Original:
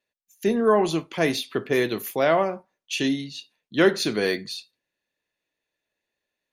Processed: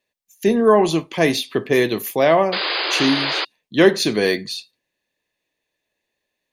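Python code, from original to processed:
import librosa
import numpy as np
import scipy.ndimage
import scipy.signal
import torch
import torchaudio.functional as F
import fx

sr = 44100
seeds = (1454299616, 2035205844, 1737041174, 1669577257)

y = fx.notch(x, sr, hz=1400.0, q=5.8)
y = fx.spec_paint(y, sr, seeds[0], shape='noise', start_s=2.52, length_s=0.93, low_hz=300.0, high_hz=5000.0, level_db=-28.0)
y = y * 10.0 ** (5.5 / 20.0)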